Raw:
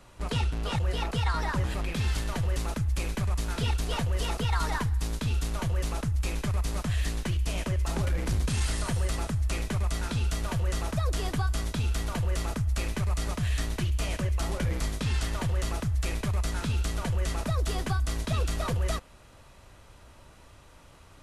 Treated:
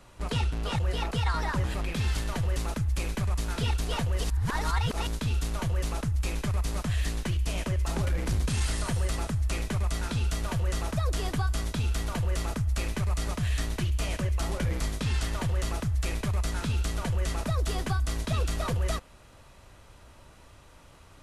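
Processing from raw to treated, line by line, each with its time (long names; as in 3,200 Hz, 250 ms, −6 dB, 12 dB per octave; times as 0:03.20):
0:04.24–0:05.07: reverse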